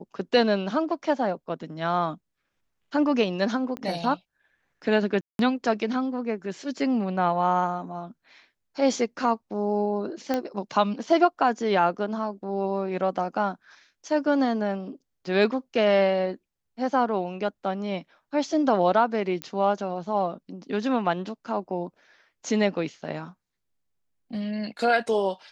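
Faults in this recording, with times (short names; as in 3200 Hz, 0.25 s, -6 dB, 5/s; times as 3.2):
3.77 pop -20 dBFS
5.21–5.39 gap 0.182 s
10.34 pop -13 dBFS
19.42 pop -16 dBFS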